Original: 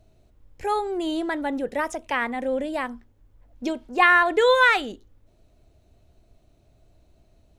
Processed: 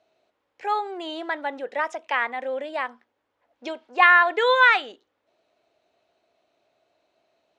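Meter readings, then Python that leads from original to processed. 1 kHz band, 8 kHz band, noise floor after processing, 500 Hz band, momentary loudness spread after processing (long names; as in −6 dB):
+1.5 dB, can't be measured, −76 dBFS, −3.0 dB, 18 LU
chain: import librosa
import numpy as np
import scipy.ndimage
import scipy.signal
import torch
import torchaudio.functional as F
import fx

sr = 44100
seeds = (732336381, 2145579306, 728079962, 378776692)

y = fx.bandpass_edges(x, sr, low_hz=620.0, high_hz=4000.0)
y = y * librosa.db_to_amplitude(2.0)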